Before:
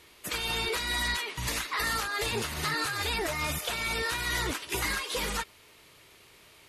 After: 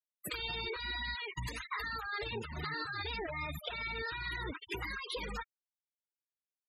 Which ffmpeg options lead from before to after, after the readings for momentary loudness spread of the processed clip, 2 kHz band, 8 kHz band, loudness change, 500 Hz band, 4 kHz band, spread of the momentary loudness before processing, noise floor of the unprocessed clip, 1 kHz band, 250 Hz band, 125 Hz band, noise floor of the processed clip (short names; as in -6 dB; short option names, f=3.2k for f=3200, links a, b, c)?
4 LU, -7.5 dB, -20.5 dB, -8.5 dB, -7.5 dB, -9.5 dB, 3 LU, -57 dBFS, -8.0 dB, -8.0 dB, -6.5 dB, under -85 dBFS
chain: -af "acompressor=threshold=-34dB:ratio=10,afftfilt=real='re*gte(hypot(re,im),0.02)':imag='im*gte(hypot(re,im),0.02)':win_size=1024:overlap=0.75"